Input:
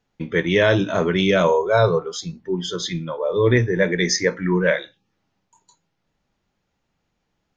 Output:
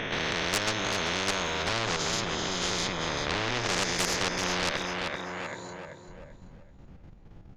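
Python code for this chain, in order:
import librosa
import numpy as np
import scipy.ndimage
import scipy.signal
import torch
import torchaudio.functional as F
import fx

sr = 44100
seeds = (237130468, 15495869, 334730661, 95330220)

y = fx.spec_swells(x, sr, rise_s=1.53)
y = fx.tilt_eq(y, sr, slope=fx.steps((0.0, -1.5), (1.62, -4.0)))
y = fx.level_steps(y, sr, step_db=11)
y = fx.tube_stage(y, sr, drive_db=16.0, bias=0.4)
y = fx.echo_thinned(y, sr, ms=387, feedback_pct=31, hz=180.0, wet_db=-11.5)
y = fx.spectral_comp(y, sr, ratio=4.0)
y = y * 10.0 ** (2.5 / 20.0)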